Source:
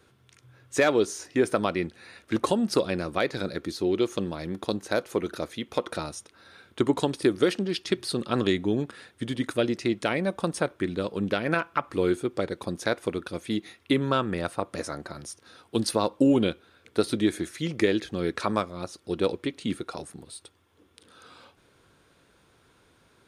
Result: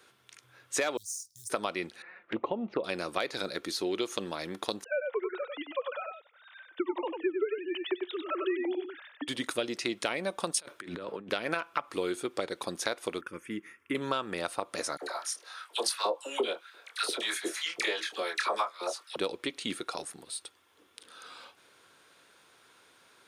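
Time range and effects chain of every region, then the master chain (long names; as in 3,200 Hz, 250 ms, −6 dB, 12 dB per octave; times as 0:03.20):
0:00.97–0:01.50: mu-law and A-law mismatch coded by A + inverse Chebyshev band-stop filter 260–2,600 Hz, stop band 50 dB + de-essing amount 65%
0:02.02–0:02.84: low-pass filter 2,100 Hz 24 dB per octave + flanger swept by the level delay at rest 6.7 ms, full sweep at −23.5 dBFS
0:04.84–0:09.28: three sine waves on the formant tracks + single-tap delay 96 ms −6 dB
0:10.53–0:11.30: notch filter 750 Hz, Q 11 + compressor whose output falls as the input rises −35 dBFS + multiband upward and downward expander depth 100%
0:13.21–0:13.95: high-shelf EQ 2,300 Hz −10 dB + phaser with its sweep stopped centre 1,700 Hz, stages 4
0:14.97–0:19.16: double-tracking delay 25 ms −6.5 dB + auto-filter high-pass saw up 2.9 Hz 370–1,900 Hz + all-pass dispersion lows, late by 56 ms, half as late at 1,100 Hz
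whole clip: high-pass filter 940 Hz 6 dB per octave; dynamic equaliser 1,700 Hz, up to −4 dB, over −45 dBFS, Q 1.9; downward compressor 4 to 1, threshold −32 dBFS; level +4.5 dB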